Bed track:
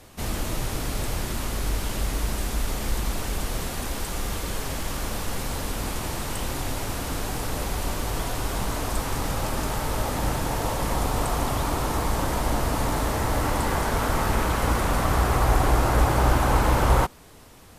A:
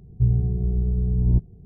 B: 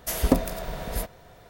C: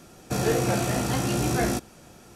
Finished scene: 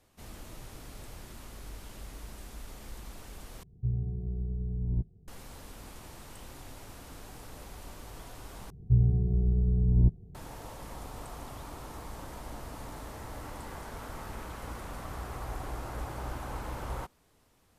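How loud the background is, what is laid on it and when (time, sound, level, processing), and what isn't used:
bed track −18 dB
0:03.63: overwrite with A −11.5 dB
0:08.70: overwrite with A −3.5 dB
not used: B, C

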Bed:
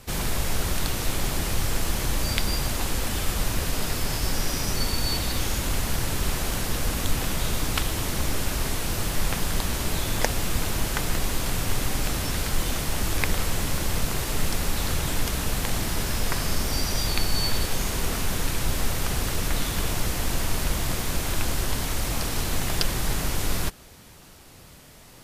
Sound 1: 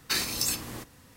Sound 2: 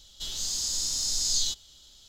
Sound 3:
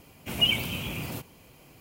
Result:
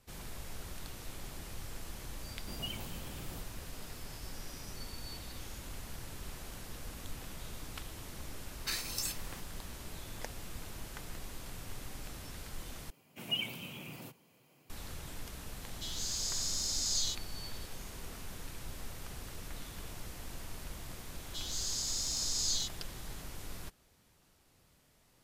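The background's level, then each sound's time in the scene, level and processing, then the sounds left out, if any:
bed −19 dB
0:02.21: mix in 3 −12.5 dB + parametric band 2,400 Hz −10.5 dB
0:08.57: mix in 1 −8.5 dB + low-shelf EQ 490 Hz −9.5 dB
0:12.90: overwrite with 3 −11.5 dB + high-pass filter 120 Hz 24 dB per octave
0:15.61: mix in 2 −6.5 dB
0:21.14: mix in 2 −6.5 dB

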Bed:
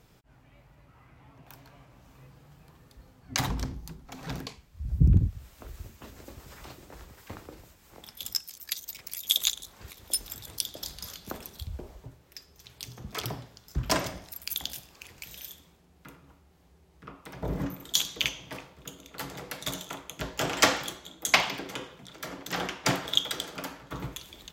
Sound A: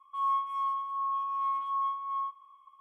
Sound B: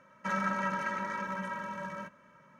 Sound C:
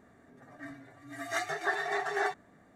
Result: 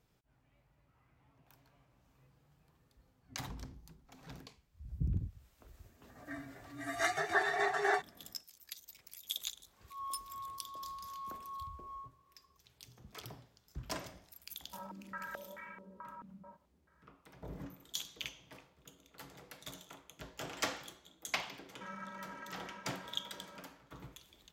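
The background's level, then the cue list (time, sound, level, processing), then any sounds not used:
bed −14.5 dB
0:05.68: mix in C −14.5 dB + automatic gain control gain up to 15 dB
0:09.77: mix in A −14 dB + adaptive Wiener filter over 9 samples
0:14.48: mix in B −17.5 dB + low-pass on a step sequencer 4.6 Hz 220–2,300 Hz
0:21.56: mix in B −15 dB

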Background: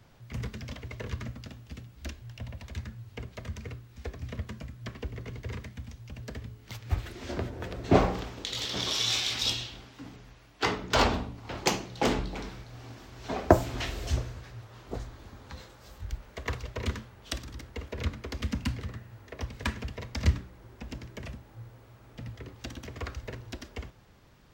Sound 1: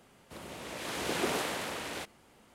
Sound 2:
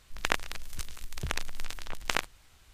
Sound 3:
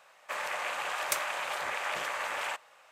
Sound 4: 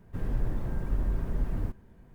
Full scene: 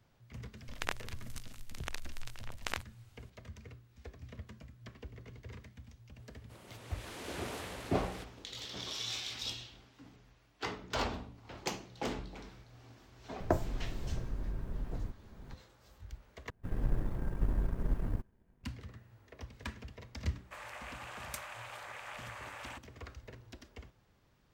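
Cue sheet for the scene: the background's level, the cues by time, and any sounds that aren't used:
background −11 dB
0:00.57: mix in 2 −8.5 dB
0:06.19: mix in 1 −10.5 dB
0:13.40: mix in 4 −9.5 dB + multiband upward and downward compressor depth 100%
0:16.50: overwrite with 4 −1 dB + power curve on the samples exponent 1.4
0:20.22: mix in 3 −12.5 dB

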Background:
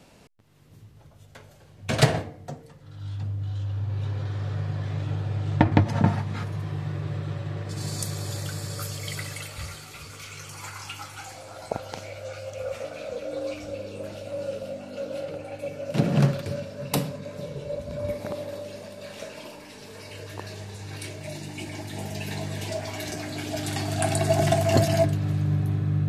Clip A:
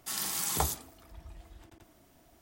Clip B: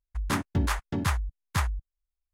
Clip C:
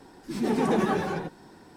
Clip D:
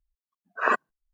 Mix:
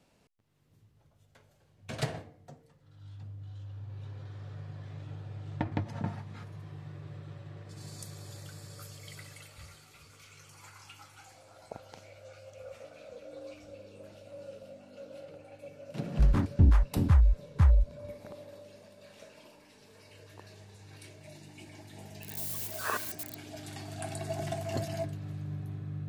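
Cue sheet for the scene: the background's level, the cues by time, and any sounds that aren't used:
background −14 dB
0:16.04: mix in B −8 dB + spectral tilt −4 dB per octave
0:22.22: mix in D −11 dB + spike at every zero crossing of −17 dBFS
not used: A, C

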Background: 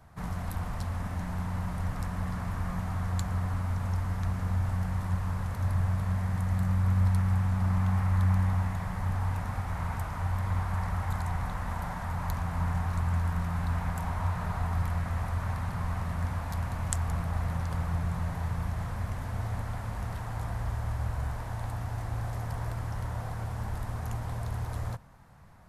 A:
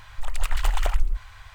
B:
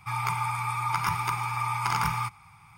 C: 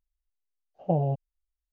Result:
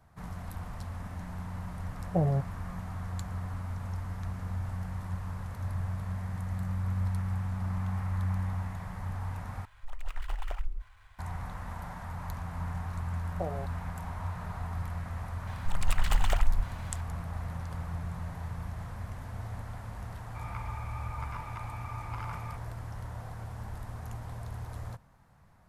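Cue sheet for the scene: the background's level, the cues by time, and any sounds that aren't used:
background −6 dB
0:01.26: mix in C −6 dB + spectral tilt −2 dB per octave
0:09.65: overwrite with A −12 dB + running median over 9 samples
0:12.51: mix in C −7.5 dB + high-pass filter 330 Hz
0:15.47: mix in A −3 dB
0:20.28: mix in B −14.5 dB + low-pass filter 2,700 Hz

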